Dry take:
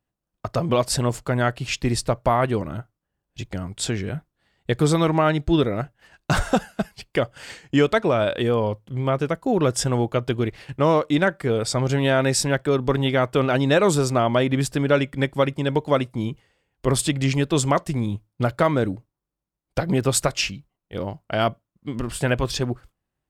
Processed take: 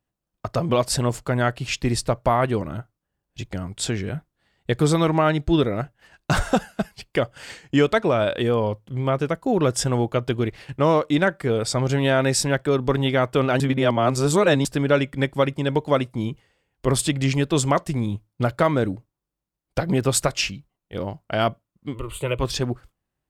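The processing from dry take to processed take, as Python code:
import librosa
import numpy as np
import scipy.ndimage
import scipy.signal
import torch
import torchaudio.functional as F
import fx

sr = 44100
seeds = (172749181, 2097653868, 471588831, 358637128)

y = fx.fixed_phaser(x, sr, hz=1100.0, stages=8, at=(21.93, 22.39), fade=0.02)
y = fx.edit(y, sr, fx.reverse_span(start_s=13.6, length_s=1.05), tone=tone)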